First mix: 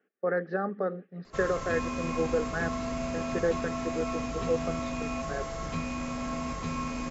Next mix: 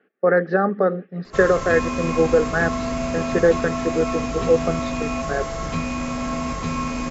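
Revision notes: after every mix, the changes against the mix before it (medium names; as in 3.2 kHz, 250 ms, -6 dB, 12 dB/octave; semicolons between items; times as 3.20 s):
speech +11.5 dB; background +8.0 dB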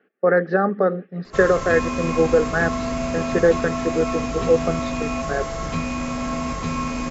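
no change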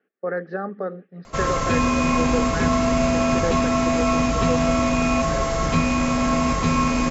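speech -9.5 dB; background +5.5 dB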